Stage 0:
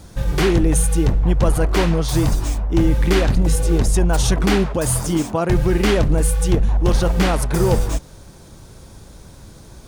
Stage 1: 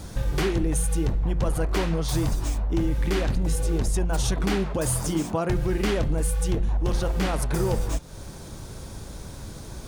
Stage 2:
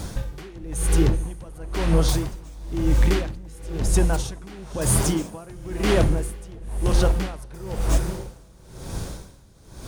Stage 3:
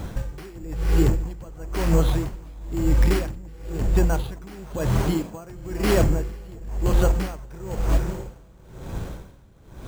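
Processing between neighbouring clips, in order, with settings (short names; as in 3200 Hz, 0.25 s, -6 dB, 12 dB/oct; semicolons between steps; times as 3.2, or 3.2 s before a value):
compressor 2.5:1, threshold -29 dBFS, peak gain reduction 12.5 dB; de-hum 174.3 Hz, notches 25; gain +3 dB
diffused feedback echo 0.504 s, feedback 40%, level -10 dB; dB-linear tremolo 1 Hz, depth 23 dB; gain +6.5 dB
careless resampling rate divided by 6×, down filtered, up hold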